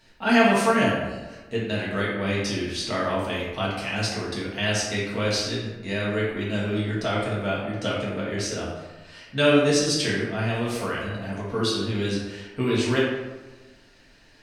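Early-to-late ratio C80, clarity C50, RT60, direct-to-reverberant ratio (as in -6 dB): 3.5 dB, 0.5 dB, 1.3 s, -6.5 dB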